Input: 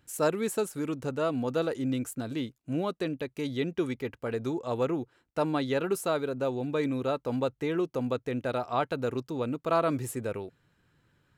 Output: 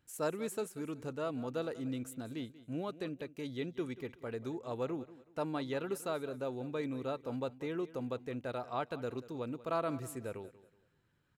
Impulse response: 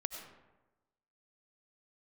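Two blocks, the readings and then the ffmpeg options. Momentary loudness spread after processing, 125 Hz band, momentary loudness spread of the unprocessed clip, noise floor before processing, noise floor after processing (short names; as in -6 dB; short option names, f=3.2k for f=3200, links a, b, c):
6 LU, -8.5 dB, 6 LU, -73 dBFS, -73 dBFS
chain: -af "aecho=1:1:187|374|561:0.141|0.0438|0.0136,volume=-8.5dB"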